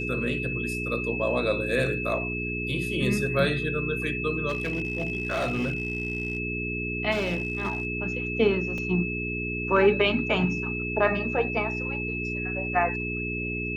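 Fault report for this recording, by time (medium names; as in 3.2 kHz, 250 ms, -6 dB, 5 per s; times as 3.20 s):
hum 60 Hz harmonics 7 -33 dBFS
whine 2.6 kHz -31 dBFS
4.48–6.38 s: clipped -23 dBFS
7.11–7.87 s: clipped -22.5 dBFS
8.78 s: dropout 3 ms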